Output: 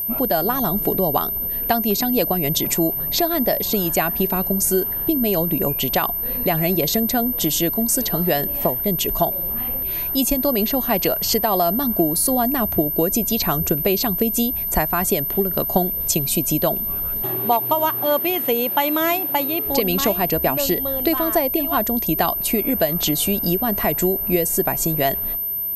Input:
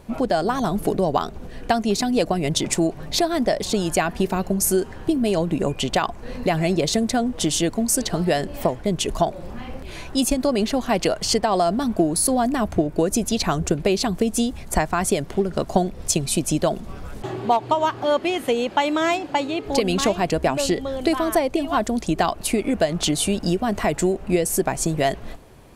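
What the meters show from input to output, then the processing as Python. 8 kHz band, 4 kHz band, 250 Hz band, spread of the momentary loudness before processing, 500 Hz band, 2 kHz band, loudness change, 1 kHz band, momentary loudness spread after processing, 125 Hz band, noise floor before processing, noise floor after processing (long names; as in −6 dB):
0.0 dB, 0.0 dB, 0.0 dB, 4 LU, 0.0 dB, 0.0 dB, +3.0 dB, 0.0 dB, 2 LU, 0.0 dB, −37 dBFS, −25 dBFS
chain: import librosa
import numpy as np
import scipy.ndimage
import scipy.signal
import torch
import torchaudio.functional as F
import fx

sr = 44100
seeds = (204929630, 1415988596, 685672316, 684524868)

y = x + 10.0 ** (-22.0 / 20.0) * np.sin(2.0 * np.pi * 13000.0 * np.arange(len(x)) / sr)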